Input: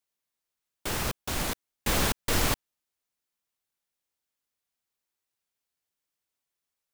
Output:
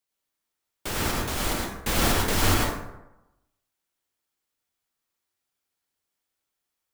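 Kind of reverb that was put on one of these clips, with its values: plate-style reverb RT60 0.93 s, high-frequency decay 0.5×, pre-delay 80 ms, DRR -2.5 dB

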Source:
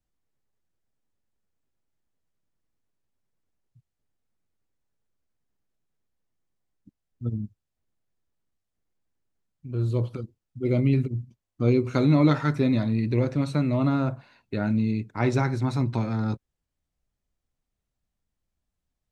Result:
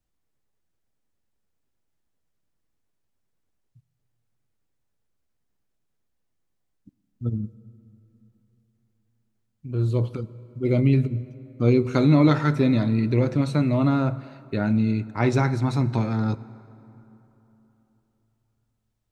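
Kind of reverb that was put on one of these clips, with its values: plate-style reverb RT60 3.5 s, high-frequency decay 0.55×, DRR 17 dB; gain +2.5 dB

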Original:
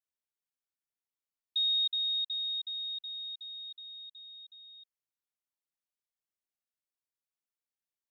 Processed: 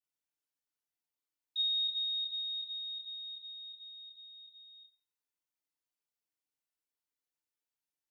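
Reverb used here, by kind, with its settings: FDN reverb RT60 0.35 s, low-frequency decay 0.85×, high-frequency decay 1×, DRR -6 dB; gain -7.5 dB

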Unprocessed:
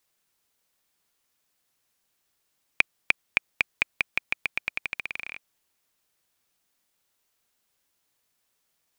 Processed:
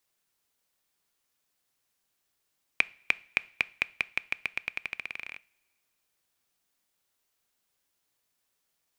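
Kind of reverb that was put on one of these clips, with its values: two-slope reverb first 0.43 s, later 1.9 s, from -19 dB, DRR 18.5 dB; gain -3.5 dB

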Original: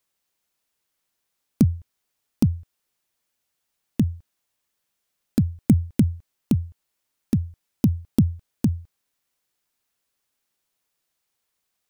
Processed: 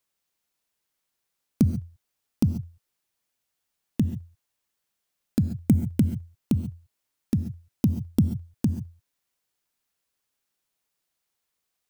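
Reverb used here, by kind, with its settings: non-linear reverb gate 0.16 s rising, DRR 11 dB; gain -3 dB

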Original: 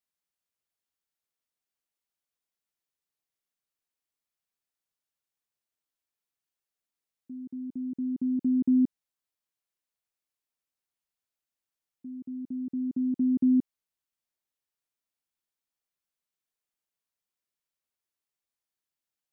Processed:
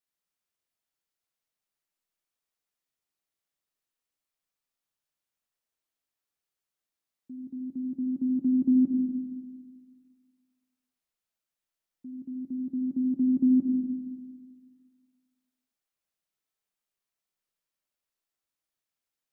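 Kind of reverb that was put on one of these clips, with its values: digital reverb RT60 1.8 s, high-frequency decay 0.7×, pre-delay 25 ms, DRR 1 dB; gain -1 dB

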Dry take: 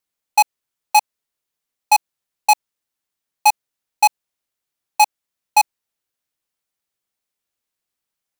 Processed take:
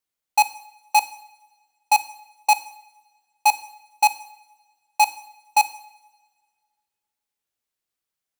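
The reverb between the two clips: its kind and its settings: two-slope reverb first 0.68 s, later 1.8 s, from -17 dB, DRR 12 dB; gain -3.5 dB

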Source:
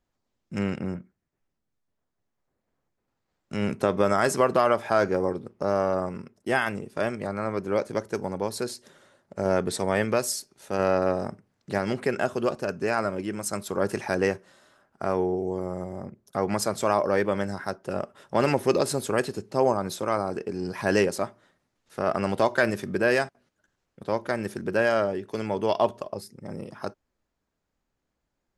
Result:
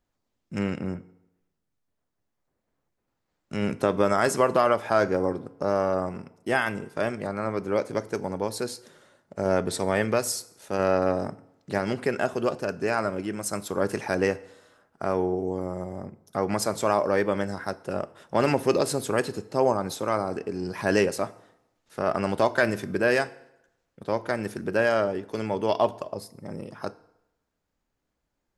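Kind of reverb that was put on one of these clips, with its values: FDN reverb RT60 0.86 s, low-frequency decay 0.95×, high-frequency decay 0.8×, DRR 15.5 dB

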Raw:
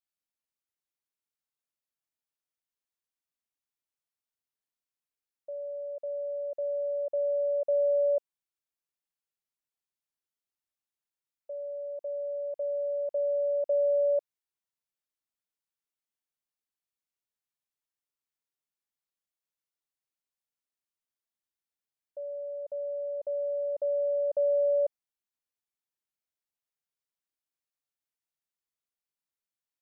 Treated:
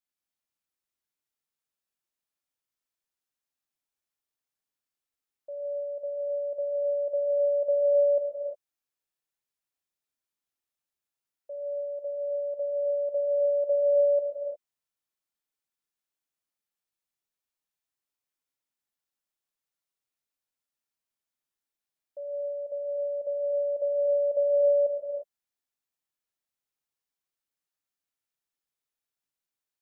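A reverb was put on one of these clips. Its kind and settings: non-linear reverb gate 0.38 s flat, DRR 0 dB; gain -1 dB

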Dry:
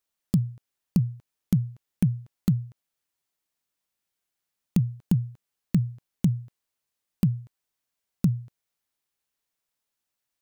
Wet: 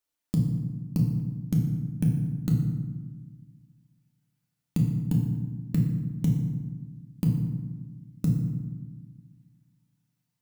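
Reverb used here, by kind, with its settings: FDN reverb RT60 1.3 s, low-frequency decay 1.55×, high-frequency decay 0.6×, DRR -1 dB; gain -4 dB

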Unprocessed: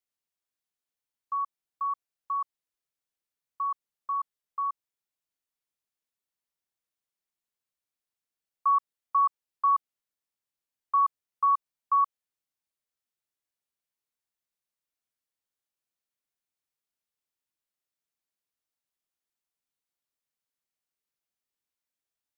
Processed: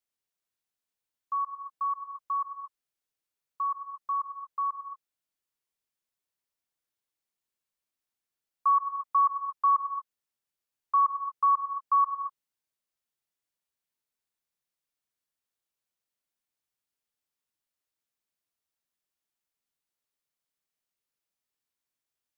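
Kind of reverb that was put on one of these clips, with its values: non-linear reverb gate 0.26 s rising, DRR 7.5 dB

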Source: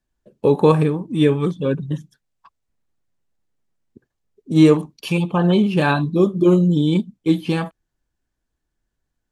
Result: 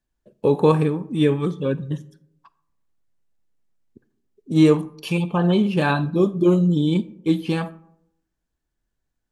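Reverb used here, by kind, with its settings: digital reverb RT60 0.78 s, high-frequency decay 0.4×, pre-delay 0 ms, DRR 17 dB; gain -2.5 dB

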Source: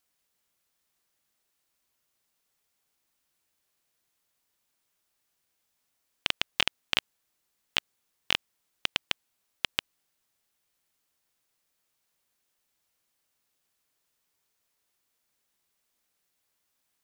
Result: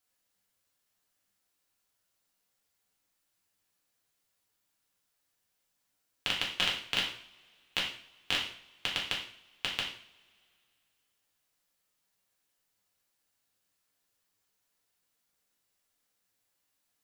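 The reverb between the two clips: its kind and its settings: two-slope reverb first 0.51 s, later 2.6 s, from -27 dB, DRR -3.5 dB; gain -6.5 dB

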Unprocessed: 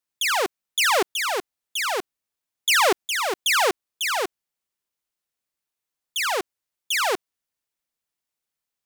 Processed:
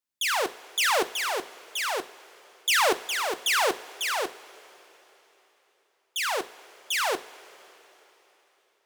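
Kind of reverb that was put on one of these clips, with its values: two-slope reverb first 0.3 s, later 3.8 s, from -18 dB, DRR 10 dB; gain -4 dB

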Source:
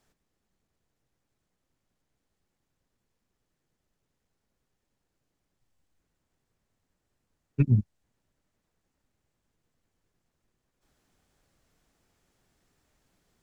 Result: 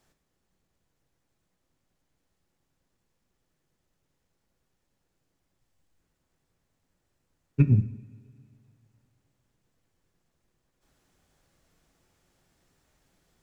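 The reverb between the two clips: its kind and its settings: two-slope reverb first 0.67 s, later 2.7 s, from -18 dB, DRR 9 dB; gain +2 dB

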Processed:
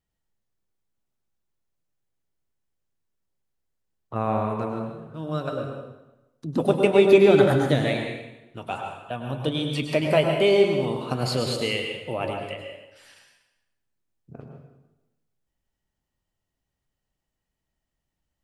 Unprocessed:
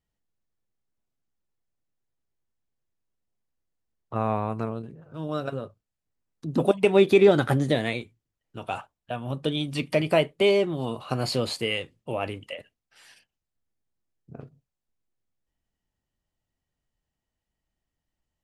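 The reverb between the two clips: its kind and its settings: plate-style reverb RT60 1 s, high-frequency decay 0.85×, pre-delay 90 ms, DRR 2.5 dB

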